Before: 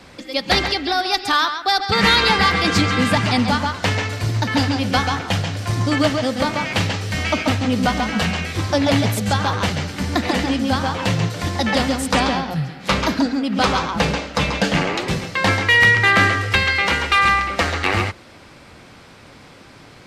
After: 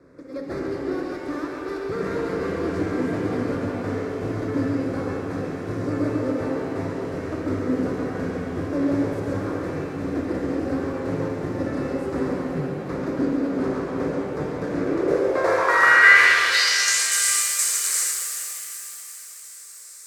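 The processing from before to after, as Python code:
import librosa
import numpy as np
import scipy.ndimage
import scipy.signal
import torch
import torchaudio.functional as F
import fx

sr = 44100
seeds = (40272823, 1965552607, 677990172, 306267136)

p1 = fx.spec_flatten(x, sr, power=0.55)
p2 = fx.fold_sine(p1, sr, drive_db=15, ceiling_db=3.0)
p3 = p1 + F.gain(torch.from_numpy(p2), -8.0).numpy()
p4 = fx.fixed_phaser(p3, sr, hz=810.0, stages=6)
p5 = p4 + fx.echo_alternate(p4, sr, ms=189, hz=1200.0, feedback_pct=78, wet_db=-13.0, dry=0)
p6 = fx.filter_sweep_bandpass(p5, sr, from_hz=230.0, to_hz=8000.0, start_s=14.72, end_s=17.01, q=3.4)
p7 = fx.rev_shimmer(p6, sr, seeds[0], rt60_s=3.0, semitones=7, shimmer_db=-8, drr_db=0.5)
y = F.gain(torch.from_numpy(p7), -1.0).numpy()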